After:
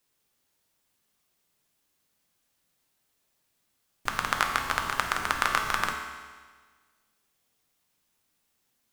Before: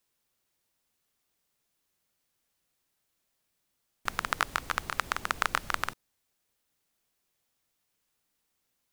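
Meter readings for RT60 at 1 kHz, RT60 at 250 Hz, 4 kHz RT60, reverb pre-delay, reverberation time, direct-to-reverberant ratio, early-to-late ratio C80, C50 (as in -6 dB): 1.5 s, 1.5 s, 1.5 s, 4 ms, 1.5 s, 2.0 dB, 6.0 dB, 4.5 dB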